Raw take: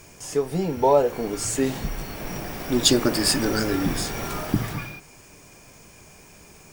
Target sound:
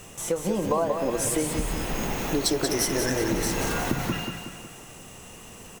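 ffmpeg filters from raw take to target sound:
-af "acompressor=threshold=-26dB:ratio=5,aecho=1:1:213|426|639|852|1065|1278:0.473|0.237|0.118|0.0591|0.0296|0.0148,asetrate=51156,aresample=44100,volume=3dB"

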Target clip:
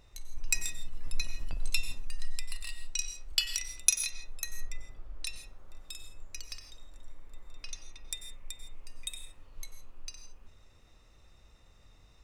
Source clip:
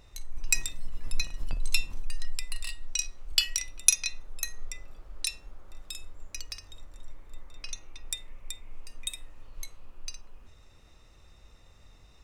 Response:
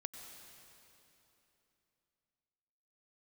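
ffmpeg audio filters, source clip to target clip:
-filter_complex "[0:a]asettb=1/sr,asplit=3[a][b][c];[a]atrim=end=4.514[d];[b]atrim=start=4.51:end=5.37,asetpts=PTS-STARTPTS,afade=t=in:d=0.004:c=qsin,afade=t=out:st=0.856:d=0.004:c=qsin,bass=f=250:g=4,treble=f=4k:g=-5[e];[c]atrim=start=5.366[f];[d][e]acrossfade=d=0.004:c1=hsin:c2=qsin[g];[g][f]acrossfade=d=0.004:c1=qsin:c2=hsin[h];[1:a]atrim=start_sample=2205,afade=t=out:st=0.22:d=0.01,atrim=end_sample=10143[i];[h][i]afir=irnorm=-1:irlink=0"

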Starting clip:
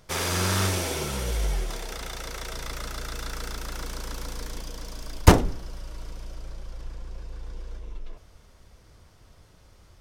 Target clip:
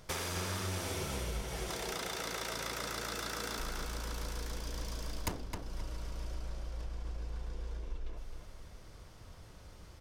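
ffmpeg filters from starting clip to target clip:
-filter_complex "[0:a]asettb=1/sr,asplit=3[a][b][c];[a]atrim=end=1.424[d];[b]atrim=start=1.42:end=3.6,asetpts=PTS-STARTPTS,afade=t=in:d=0.004:c=qsin,afade=t=out:st=2.176:d=0.004:c=qsin,highpass=130[e];[c]atrim=start=3.596[f];[d][e]acrossfade=d=0.004:c1=hsin:c2=qsin[g];[g][f]acrossfade=d=0.004:c1=qsin:c2=hsin,acompressor=threshold=-35dB:ratio=10,asplit=2[h][i];[i]adelay=263,lowpass=f=4.8k:p=1,volume=-5dB,asplit=2[j][k];[k]adelay=263,lowpass=f=4.8k:p=1,volume=0.33,asplit=2[l][m];[m]adelay=263,lowpass=f=4.8k:p=1,volume=0.33,asplit=2[n][o];[o]adelay=263,lowpass=f=4.8k:p=1,volume=0.33[p];[h][j][l][n][p]amix=inputs=5:normalize=0"

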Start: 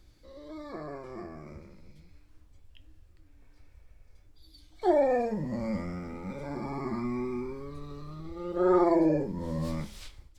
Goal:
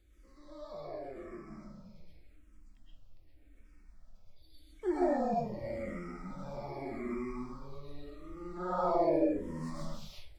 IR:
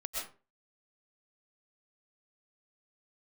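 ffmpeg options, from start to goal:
-filter_complex "[0:a]asettb=1/sr,asplit=3[a][b][c];[a]atrim=end=1.494[d];[b]atrim=start=1.49:end=5.34,asetpts=PTS-STARTPTS,afade=t=in:d=0.004:c=qsin,afade=t=out:st=3.846:d=0.004:c=qsin,equalizer=f=210:t=o:w=0.56:g=11[e];[c]atrim=start=5.336[f];[d][e]acrossfade=d=0.004:c1=hsin:c2=qsin[g];[g][f]acrossfade=d=0.004:c1=qsin:c2=hsin[h];[1:a]atrim=start_sample=2205[i];[h][i]afir=irnorm=-1:irlink=0,asplit=2[j][k];[k]afreqshift=-0.86[l];[j][l]amix=inputs=2:normalize=1,volume=-3dB"

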